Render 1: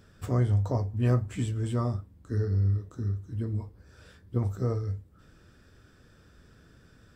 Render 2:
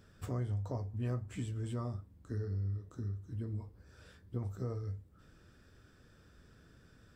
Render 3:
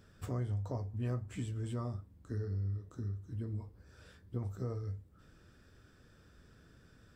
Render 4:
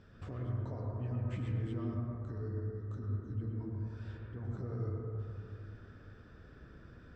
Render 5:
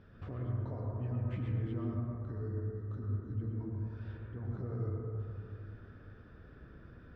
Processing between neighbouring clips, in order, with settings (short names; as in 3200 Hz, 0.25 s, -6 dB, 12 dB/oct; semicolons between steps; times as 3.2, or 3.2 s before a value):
compressor 2:1, threshold -34 dBFS, peak gain reduction 8 dB; gain -4.5 dB
nothing audible
limiter -38 dBFS, peak gain reduction 11.5 dB; air absorption 160 m; reverb RT60 2.8 s, pre-delay 93 ms, DRR -2 dB; gain +2.5 dB
air absorption 190 m; gain +1 dB